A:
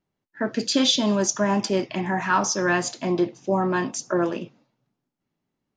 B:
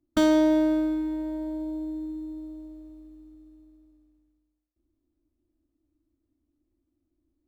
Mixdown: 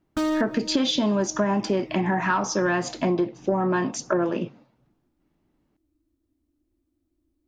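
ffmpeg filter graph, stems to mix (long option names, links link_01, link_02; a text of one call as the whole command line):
ffmpeg -i stem1.wav -i stem2.wav -filter_complex "[0:a]lowpass=frequency=2200:poles=1,acontrast=80,volume=1dB,asplit=2[link_01][link_02];[1:a]asoftclip=type=tanh:threshold=-22.5dB,volume=2.5dB[link_03];[link_02]apad=whole_len=329751[link_04];[link_03][link_04]sidechaincompress=threshold=-24dB:ratio=8:attack=7.2:release=286[link_05];[link_01][link_05]amix=inputs=2:normalize=0,acompressor=threshold=-20dB:ratio=6" out.wav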